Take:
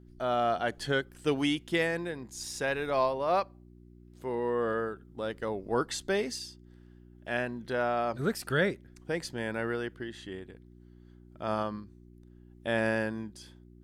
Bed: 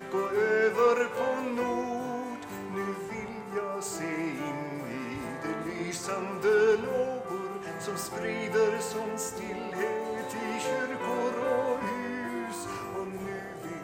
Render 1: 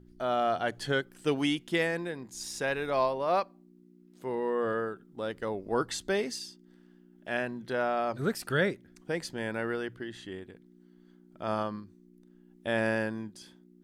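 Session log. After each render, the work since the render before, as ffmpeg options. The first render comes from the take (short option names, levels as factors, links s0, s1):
-af "bandreject=f=60:t=h:w=4,bandreject=f=120:t=h:w=4"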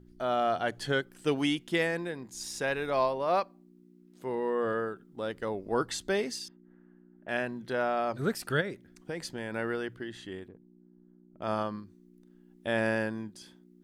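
-filter_complex "[0:a]asettb=1/sr,asplit=3[s0][s1][s2];[s0]atrim=end=6.484[s3];[s1]atrim=start=6.48:end=7.29,asetpts=PTS-STARTPTS,afade=t=in:d=0.004:c=qsin,afade=t=out:st=0.806:d=0.004:c=qsin,lowpass=f=1900:w=0.5412,lowpass=f=1900:w=1.3066[s4];[s2]atrim=start=7.286[s5];[s3][s4]acrossfade=d=0.004:c1=hsin:c2=qsin[s6];[s6][s5]acrossfade=d=0.004:c1=qsin:c2=hsin,asplit=3[s7][s8][s9];[s7]afade=t=out:st=8.6:d=0.02[s10];[s8]acompressor=threshold=0.0282:ratio=6:attack=3.2:release=140:knee=1:detection=peak,afade=t=in:st=8.6:d=0.02,afade=t=out:st=9.53:d=0.02[s11];[s9]afade=t=in:st=9.53:d=0.02[s12];[s10][s11][s12]amix=inputs=3:normalize=0,asettb=1/sr,asplit=3[s13][s14][s15];[s13]atrim=end=10.484[s16];[s14]atrim=start=10.48:end=11.42,asetpts=PTS-STARTPTS,afade=t=in:d=0.004:c=qsin,afade=t=out:st=0.936:d=0.004:c=qsin,adynamicsmooth=sensitivity=2.5:basefreq=630[s17];[s15]atrim=start=11.416[s18];[s16][s17]acrossfade=d=0.004:c1=hsin:c2=qsin[s19];[s19][s18]acrossfade=d=0.004:c1=qsin:c2=hsin"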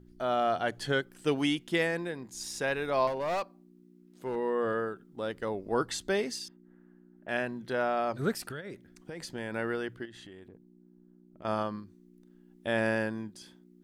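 -filter_complex "[0:a]asettb=1/sr,asplit=3[s0][s1][s2];[s0]atrim=end=3.074[s3];[s1]atrim=start=3.07:end=4.36,asetpts=PTS-STARTPTS,afade=t=in:d=0.004:c=qsin,afade=t=out:st=1.286:d=0.004:c=qsin,asoftclip=type=hard:threshold=0.0398[s4];[s2]atrim=start=4.356[s5];[s3][s4]acrossfade=d=0.004:c1=hsin:c2=qsin[s6];[s6][s5]acrossfade=d=0.004:c1=qsin:c2=hsin,asettb=1/sr,asplit=3[s7][s8][s9];[s7]atrim=end=8.444[s10];[s8]atrim=start=8.44:end=9.35,asetpts=PTS-STARTPTS,afade=t=in:d=0.004:c=qsin,afade=t=out:st=0.906:d=0.004:c=qsin,acompressor=threshold=0.0158:ratio=8:attack=3.2:release=140:knee=1:detection=peak[s11];[s9]atrim=start=9.346[s12];[s10][s11]acrossfade=d=0.004:c1=hsin:c2=qsin[s13];[s13][s12]acrossfade=d=0.004:c1=qsin:c2=hsin,asettb=1/sr,asplit=3[s14][s15][s16];[s14]atrim=end=10.054[s17];[s15]atrim=start=10.05:end=11.45,asetpts=PTS-STARTPTS,afade=t=in:d=0.004:c=qsin,afade=t=out:st=1.396:d=0.004:c=qsin,acompressor=threshold=0.00562:ratio=6:attack=3.2:release=140:knee=1:detection=peak[s18];[s16]atrim=start=11.446[s19];[s17][s18]acrossfade=d=0.004:c1=hsin:c2=qsin[s20];[s20][s19]acrossfade=d=0.004:c1=qsin:c2=hsin"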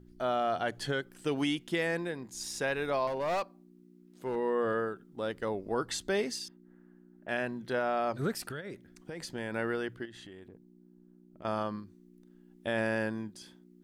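-af "alimiter=limit=0.0891:level=0:latency=1:release=92"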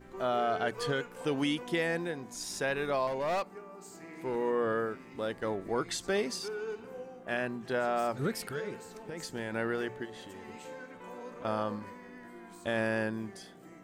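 -filter_complex "[1:a]volume=0.178[s0];[0:a][s0]amix=inputs=2:normalize=0"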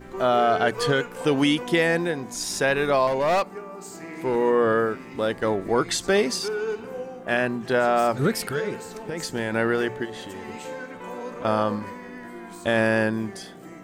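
-af "volume=3.16"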